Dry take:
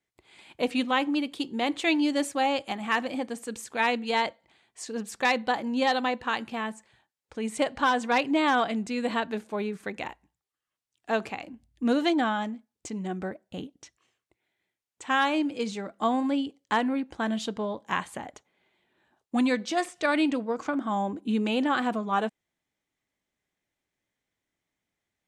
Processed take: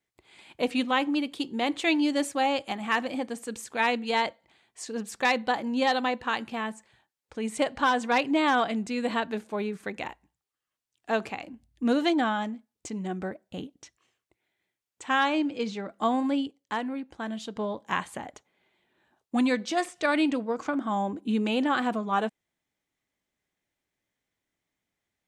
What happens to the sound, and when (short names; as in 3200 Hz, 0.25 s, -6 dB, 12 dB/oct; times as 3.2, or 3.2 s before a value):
15.09–15.88 LPF 9300 Hz -> 4500 Hz
16.47–17.56 gain -5.5 dB